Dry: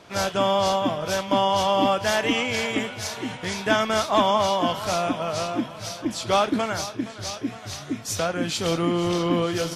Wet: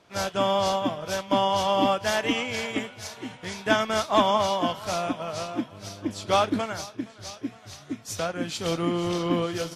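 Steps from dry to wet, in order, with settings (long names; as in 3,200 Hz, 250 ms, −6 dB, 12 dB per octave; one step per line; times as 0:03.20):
0:05.71–0:06.60: hum with harmonics 100 Hz, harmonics 6, −36 dBFS −5 dB per octave
expander for the loud parts 1.5 to 1, over −36 dBFS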